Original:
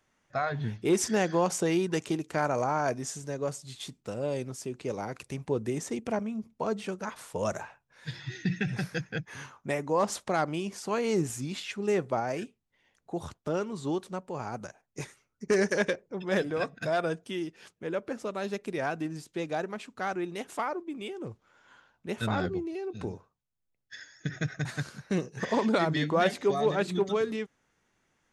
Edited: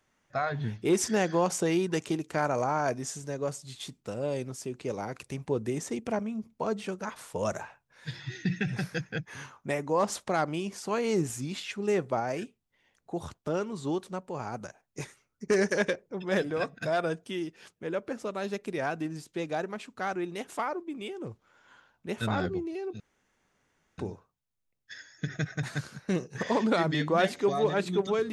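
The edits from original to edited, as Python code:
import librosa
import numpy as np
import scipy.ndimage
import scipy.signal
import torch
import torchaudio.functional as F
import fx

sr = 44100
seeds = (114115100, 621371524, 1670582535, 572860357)

y = fx.edit(x, sr, fx.insert_room_tone(at_s=23.0, length_s=0.98), tone=tone)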